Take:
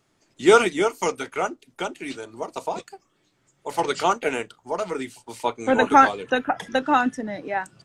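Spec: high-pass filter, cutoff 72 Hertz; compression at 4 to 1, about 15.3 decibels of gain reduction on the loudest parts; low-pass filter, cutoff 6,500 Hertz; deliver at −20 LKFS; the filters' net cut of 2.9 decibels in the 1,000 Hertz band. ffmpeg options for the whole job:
ffmpeg -i in.wav -af "highpass=72,lowpass=6500,equalizer=frequency=1000:width_type=o:gain=-4,acompressor=threshold=-29dB:ratio=4,volume=14dB" out.wav

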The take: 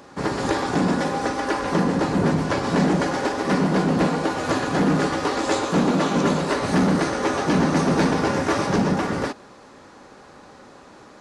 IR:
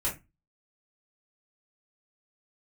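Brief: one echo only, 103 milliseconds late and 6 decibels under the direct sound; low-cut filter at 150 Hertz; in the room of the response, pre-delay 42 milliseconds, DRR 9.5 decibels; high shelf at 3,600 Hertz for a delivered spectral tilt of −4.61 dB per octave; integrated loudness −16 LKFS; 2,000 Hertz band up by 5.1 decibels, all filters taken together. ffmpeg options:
-filter_complex "[0:a]highpass=150,equalizer=frequency=2000:width_type=o:gain=7.5,highshelf=frequency=3600:gain=-3.5,aecho=1:1:103:0.501,asplit=2[link_01][link_02];[1:a]atrim=start_sample=2205,adelay=42[link_03];[link_02][link_03]afir=irnorm=-1:irlink=0,volume=-15.5dB[link_04];[link_01][link_04]amix=inputs=2:normalize=0,volume=3.5dB"

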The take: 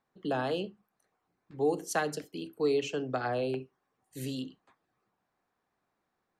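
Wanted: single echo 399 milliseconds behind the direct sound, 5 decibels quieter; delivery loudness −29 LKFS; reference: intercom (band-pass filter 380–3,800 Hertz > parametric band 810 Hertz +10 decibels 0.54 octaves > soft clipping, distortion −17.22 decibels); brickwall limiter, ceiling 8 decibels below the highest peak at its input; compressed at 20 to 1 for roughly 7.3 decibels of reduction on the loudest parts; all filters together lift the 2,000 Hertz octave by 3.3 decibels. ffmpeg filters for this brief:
ffmpeg -i in.wav -af "equalizer=frequency=2000:width_type=o:gain=4,acompressor=threshold=-30dB:ratio=20,alimiter=level_in=5dB:limit=-24dB:level=0:latency=1,volume=-5dB,highpass=380,lowpass=3800,equalizer=frequency=810:width_type=o:width=0.54:gain=10,aecho=1:1:399:0.562,asoftclip=threshold=-29.5dB,volume=11.5dB" out.wav

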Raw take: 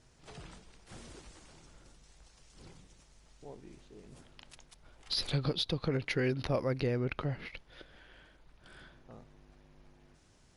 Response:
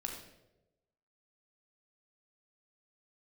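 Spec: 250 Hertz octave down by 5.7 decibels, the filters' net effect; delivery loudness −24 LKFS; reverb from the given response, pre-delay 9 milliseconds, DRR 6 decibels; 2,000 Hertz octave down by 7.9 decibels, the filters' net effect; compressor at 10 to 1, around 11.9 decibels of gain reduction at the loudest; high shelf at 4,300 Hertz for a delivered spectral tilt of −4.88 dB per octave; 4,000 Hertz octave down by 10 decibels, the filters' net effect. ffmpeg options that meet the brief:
-filter_complex "[0:a]equalizer=frequency=250:width_type=o:gain=-8.5,equalizer=frequency=2000:width_type=o:gain=-6.5,equalizer=frequency=4000:width_type=o:gain=-5.5,highshelf=frequency=4300:gain=-8.5,acompressor=threshold=-42dB:ratio=10,asplit=2[link_01][link_02];[1:a]atrim=start_sample=2205,adelay=9[link_03];[link_02][link_03]afir=irnorm=-1:irlink=0,volume=-6dB[link_04];[link_01][link_04]amix=inputs=2:normalize=0,volume=26dB"

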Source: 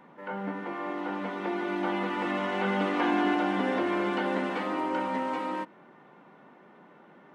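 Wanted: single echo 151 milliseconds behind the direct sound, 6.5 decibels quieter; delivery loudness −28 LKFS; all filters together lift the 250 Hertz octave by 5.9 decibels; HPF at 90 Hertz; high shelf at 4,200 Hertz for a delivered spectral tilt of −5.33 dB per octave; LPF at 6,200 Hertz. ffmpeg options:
ffmpeg -i in.wav -af "highpass=90,lowpass=6200,equalizer=frequency=250:width_type=o:gain=8,highshelf=frequency=4200:gain=-8,aecho=1:1:151:0.473,volume=-2.5dB" out.wav

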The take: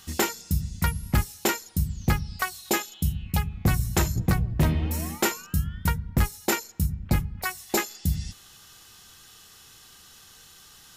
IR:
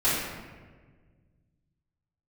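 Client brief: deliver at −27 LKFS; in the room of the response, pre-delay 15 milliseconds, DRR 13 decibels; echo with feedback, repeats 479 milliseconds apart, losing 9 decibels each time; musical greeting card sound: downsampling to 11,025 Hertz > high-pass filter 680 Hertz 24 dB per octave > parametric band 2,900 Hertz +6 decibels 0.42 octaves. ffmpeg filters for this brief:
-filter_complex "[0:a]aecho=1:1:479|958|1437|1916:0.355|0.124|0.0435|0.0152,asplit=2[link_01][link_02];[1:a]atrim=start_sample=2205,adelay=15[link_03];[link_02][link_03]afir=irnorm=-1:irlink=0,volume=-27dB[link_04];[link_01][link_04]amix=inputs=2:normalize=0,aresample=11025,aresample=44100,highpass=frequency=680:width=0.5412,highpass=frequency=680:width=1.3066,equalizer=frequency=2900:width_type=o:width=0.42:gain=6,volume=5.5dB"

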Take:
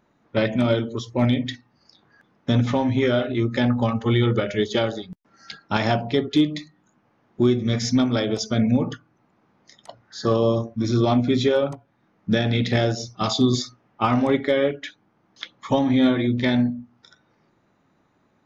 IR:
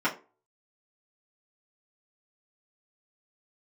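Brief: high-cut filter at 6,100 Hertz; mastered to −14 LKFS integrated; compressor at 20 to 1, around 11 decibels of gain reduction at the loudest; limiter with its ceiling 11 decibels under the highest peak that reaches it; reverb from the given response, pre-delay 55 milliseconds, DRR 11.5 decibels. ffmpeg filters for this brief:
-filter_complex "[0:a]lowpass=6100,acompressor=threshold=-25dB:ratio=20,alimiter=limit=-24dB:level=0:latency=1,asplit=2[link_01][link_02];[1:a]atrim=start_sample=2205,adelay=55[link_03];[link_02][link_03]afir=irnorm=-1:irlink=0,volume=-24dB[link_04];[link_01][link_04]amix=inputs=2:normalize=0,volume=19.5dB"

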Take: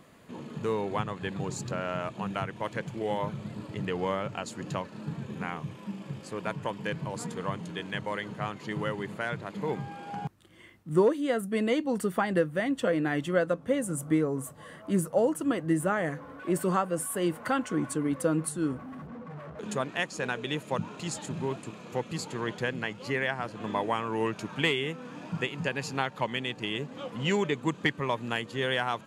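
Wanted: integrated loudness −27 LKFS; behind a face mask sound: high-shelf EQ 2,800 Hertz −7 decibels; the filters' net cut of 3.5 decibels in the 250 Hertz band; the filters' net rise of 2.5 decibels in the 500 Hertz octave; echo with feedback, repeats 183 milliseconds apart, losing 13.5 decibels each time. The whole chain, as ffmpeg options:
ffmpeg -i in.wav -af "equalizer=frequency=250:width_type=o:gain=-7,equalizer=frequency=500:width_type=o:gain=5,highshelf=frequency=2800:gain=-7,aecho=1:1:183|366:0.211|0.0444,volume=4dB" out.wav

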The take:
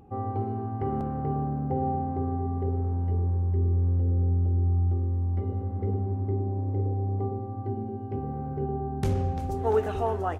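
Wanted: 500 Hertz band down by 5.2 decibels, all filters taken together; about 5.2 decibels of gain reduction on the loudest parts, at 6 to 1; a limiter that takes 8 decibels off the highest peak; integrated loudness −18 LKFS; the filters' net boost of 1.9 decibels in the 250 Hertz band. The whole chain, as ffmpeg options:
ffmpeg -i in.wav -af "equalizer=frequency=250:width_type=o:gain=4.5,equalizer=frequency=500:width_type=o:gain=-9,acompressor=threshold=-26dB:ratio=6,volume=16.5dB,alimiter=limit=-10.5dB:level=0:latency=1" out.wav

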